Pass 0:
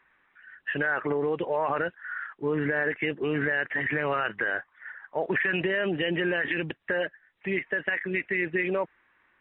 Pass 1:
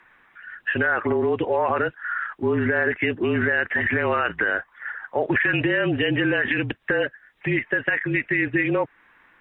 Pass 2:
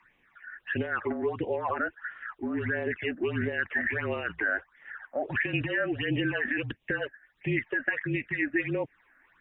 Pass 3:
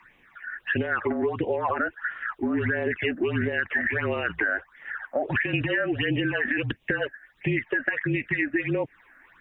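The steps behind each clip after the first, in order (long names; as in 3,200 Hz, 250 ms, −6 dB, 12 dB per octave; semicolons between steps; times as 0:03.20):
in parallel at +1.5 dB: downward compressor, threshold −36 dBFS, peak gain reduction 13 dB; on the sum: frequency shifter −35 Hz; level +3 dB
all-pass phaser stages 8, 1.5 Hz, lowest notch 120–1,500 Hz; level −5 dB
downward compressor, threshold −30 dBFS, peak gain reduction 8 dB; level +8 dB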